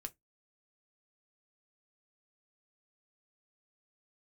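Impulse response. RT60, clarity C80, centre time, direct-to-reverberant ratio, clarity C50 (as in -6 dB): 0.15 s, 41.5 dB, 3 ms, 6.5 dB, 27.5 dB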